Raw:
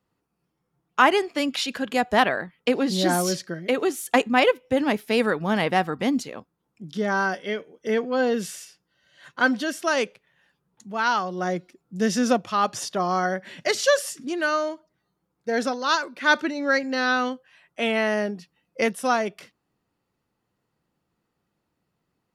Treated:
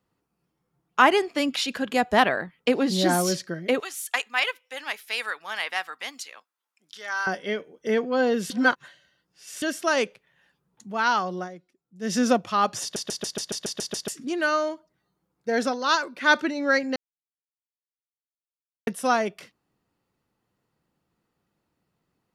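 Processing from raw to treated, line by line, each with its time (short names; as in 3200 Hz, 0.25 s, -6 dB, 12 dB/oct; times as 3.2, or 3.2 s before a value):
3.8–7.27 HPF 1400 Hz
8.5–9.62 reverse
11.35–12.15 dip -15.5 dB, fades 0.14 s
12.82 stutter in place 0.14 s, 9 plays
16.96–18.87 mute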